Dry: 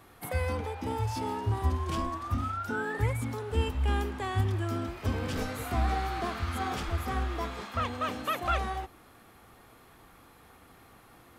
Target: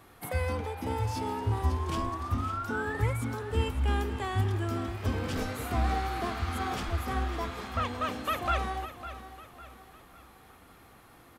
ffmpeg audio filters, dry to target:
ffmpeg -i in.wav -af "aecho=1:1:553|1106|1659|2212:0.224|0.0918|0.0376|0.0154" out.wav

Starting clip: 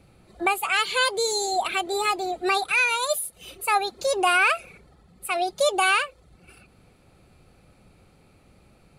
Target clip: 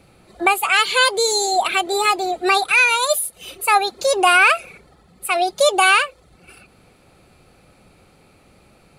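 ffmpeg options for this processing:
ffmpeg -i in.wav -af "lowshelf=frequency=210:gain=-7,volume=7dB" out.wav

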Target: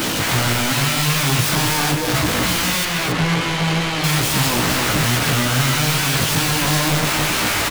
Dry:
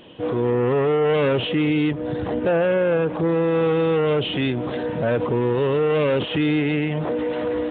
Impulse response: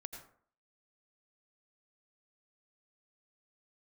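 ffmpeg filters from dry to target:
-filter_complex "[0:a]aeval=exprs='val(0)+0.5*0.0422*sgn(val(0))':channel_layout=same,highpass=frequency=62:poles=1,lowshelf=frequency=140:gain=3.5,asettb=1/sr,asplit=3[link_01][link_02][link_03];[link_01]atrim=end=1.554[link_04];[link_02]atrim=start=1.55:end=2.14,asetpts=PTS-STARTPTS,afade=type=in:duration=0.004:curve=qsin,afade=type=out:start_time=0.586:duration=0.004:curve=qsin,agate=range=-33dB:threshold=-17dB:ratio=3:detection=peak[link_05];[link_03]atrim=start=2.136[link_06];[link_04][link_05]acrossfade=duration=0.004:curve1=hsin:curve2=qsin[link_07];[link_07][link_06]acrossfade=duration=0.004:curve1=qsin:curve2=hsin,asplit=2[link_08][link_09];[link_09]alimiter=limit=-18dB:level=0:latency=1:release=156,volume=2.5dB[link_10];[link_08][link_10]amix=inputs=2:normalize=0,acompressor=mode=upward:threshold=-18dB:ratio=2.5,acrossover=split=220[link_11][link_12];[link_12]aeval=exprs='(mod(7.08*val(0)+1,2)-1)/7.08':channel_layout=same[link_13];[link_11][link_13]amix=inputs=2:normalize=0,flanger=delay=15:depth=4.9:speed=2.3,acrusher=bits=4:mix=0:aa=0.000001,asettb=1/sr,asplit=3[link_14][link_15][link_16];[link_14]atrim=end=2.854[link_17];[link_15]atrim=start=2.85:end=4.04,asetpts=PTS-STARTPTS,afade=type=in:duration=0.004:curve=qsin,afade=type=out:start_time=1.186:duration=0.004:curve=qsin,adynamicsmooth=sensitivity=2:basefreq=2000[link_18];[link_16]atrim=start=4.036[link_19];[link_17][link_18]acrossfade=duration=0.004:curve1=hsin:curve2=qsin[link_20];[link_20][link_19]acrossfade=duration=0.004:curve1=qsin:curve2=hsin,aecho=1:1:269:0.501,volume=3.5dB"

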